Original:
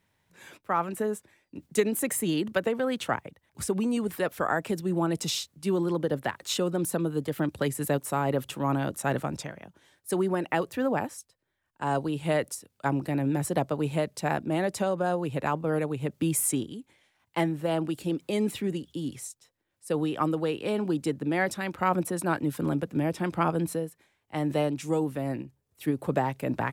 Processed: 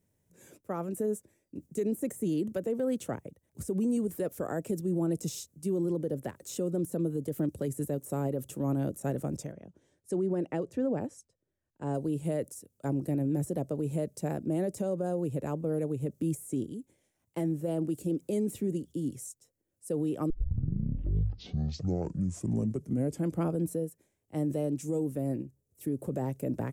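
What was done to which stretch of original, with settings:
0:09.52–0:11.94: high-frequency loss of the air 80 metres
0:20.30: tape start 3.12 s
whole clip: flat-topped bell 1,900 Hz −15 dB 2.9 octaves; brickwall limiter −22.5 dBFS; de-essing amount 75%

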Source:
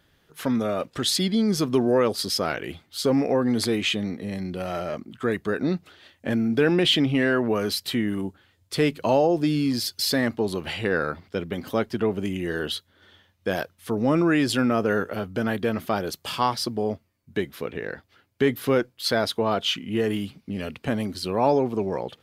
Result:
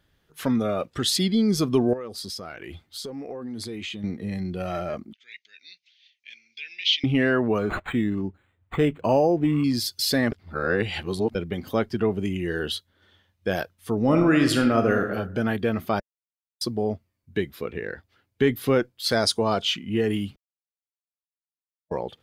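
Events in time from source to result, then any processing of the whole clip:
0:01.93–0:04.04: downward compressor 4 to 1, threshold −32 dBFS
0:05.13–0:07.04: elliptic band-pass filter 2,200–6,100 Hz
0:07.58–0:09.64: linearly interpolated sample-rate reduction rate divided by 8×
0:10.32–0:11.35: reverse
0:14.00–0:15.04: thrown reverb, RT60 0.98 s, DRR 5 dB
0:16.00–0:16.61: silence
0:19.11–0:19.62: flat-topped bell 6,800 Hz +11 dB 1.3 octaves
0:20.36–0:21.91: silence
whole clip: low-shelf EQ 79 Hz +8.5 dB; noise reduction from a noise print of the clip's start 6 dB

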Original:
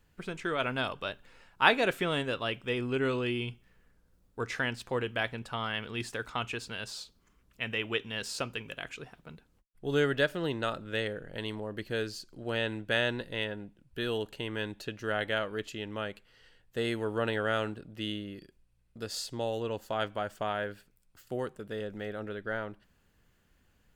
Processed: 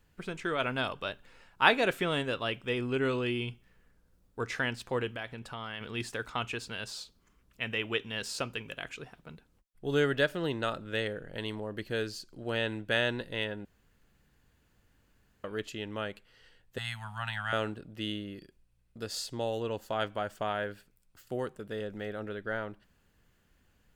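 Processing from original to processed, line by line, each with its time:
0:05.10–0:05.81: downward compressor 2 to 1, threshold −40 dBFS
0:13.65–0:15.44: fill with room tone
0:16.78–0:17.53: elliptic band-stop filter 180–770 Hz

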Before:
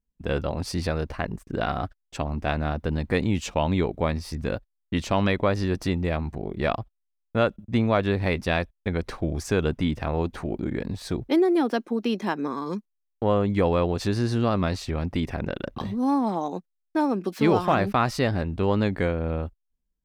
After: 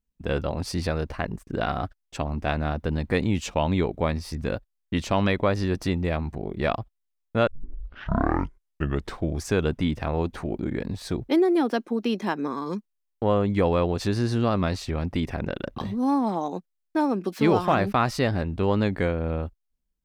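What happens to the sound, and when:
0:07.47: tape start 1.78 s

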